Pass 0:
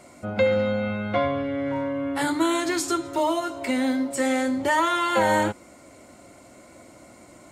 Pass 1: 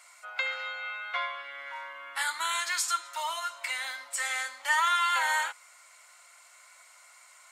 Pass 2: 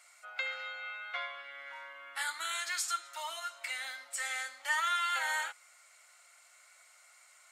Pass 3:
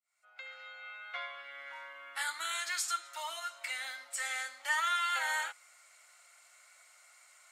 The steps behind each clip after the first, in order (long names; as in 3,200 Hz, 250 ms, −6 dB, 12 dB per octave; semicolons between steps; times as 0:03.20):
high-pass filter 1,100 Hz 24 dB per octave
notch filter 1,000 Hz, Q 6.1; level −5 dB
fade in at the beginning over 1.56 s